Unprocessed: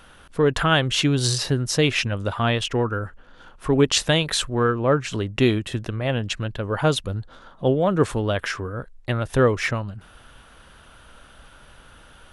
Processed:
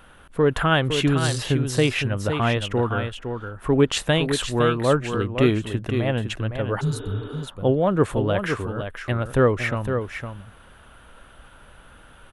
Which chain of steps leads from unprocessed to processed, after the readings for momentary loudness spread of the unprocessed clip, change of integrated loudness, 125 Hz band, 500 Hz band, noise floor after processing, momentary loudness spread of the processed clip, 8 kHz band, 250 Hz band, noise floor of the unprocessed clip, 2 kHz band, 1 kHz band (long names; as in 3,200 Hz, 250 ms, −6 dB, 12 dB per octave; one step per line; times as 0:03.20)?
11 LU, −0.5 dB, +0.5 dB, +0.5 dB, −49 dBFS, 10 LU, −5.0 dB, +0.5 dB, −50 dBFS, −0.5 dB, 0.0 dB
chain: parametric band 5,300 Hz −9.5 dB 1.1 octaves
single-tap delay 510 ms −7.5 dB
healed spectral selection 0:06.83–0:07.40, 210–3,800 Hz after